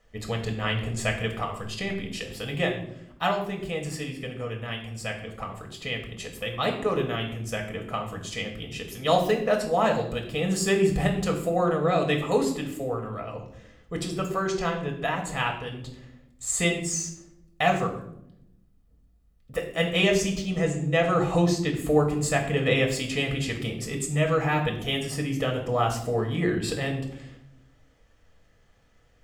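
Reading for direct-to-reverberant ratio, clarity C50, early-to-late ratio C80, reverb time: 1.0 dB, 8.5 dB, 11.0 dB, 0.75 s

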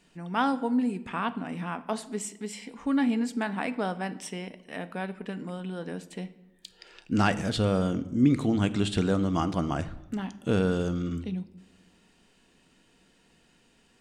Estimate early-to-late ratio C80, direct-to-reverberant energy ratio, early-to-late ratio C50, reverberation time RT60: 18.5 dB, 11.0 dB, 16.5 dB, 0.95 s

